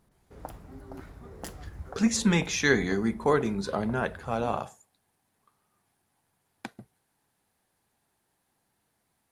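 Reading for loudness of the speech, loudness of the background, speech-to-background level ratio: -27.0 LUFS, -45.5 LUFS, 18.5 dB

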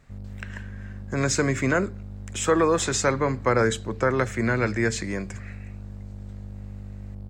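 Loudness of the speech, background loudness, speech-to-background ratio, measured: -24.5 LUFS, -39.5 LUFS, 15.0 dB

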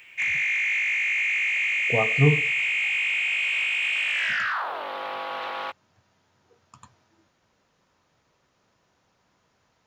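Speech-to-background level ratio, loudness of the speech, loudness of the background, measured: -1.0 dB, -24.0 LUFS, -23.0 LUFS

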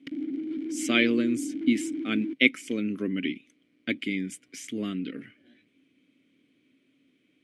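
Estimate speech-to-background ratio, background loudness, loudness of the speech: 6.0 dB, -34.0 LUFS, -28.0 LUFS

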